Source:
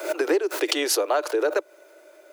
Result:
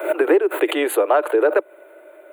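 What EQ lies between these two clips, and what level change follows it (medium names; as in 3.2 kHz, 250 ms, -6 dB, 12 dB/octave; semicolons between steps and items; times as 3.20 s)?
high-pass 210 Hz; Butterworth band-stop 5.4 kHz, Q 0.9; treble shelf 2.7 kHz -7.5 dB; +7.0 dB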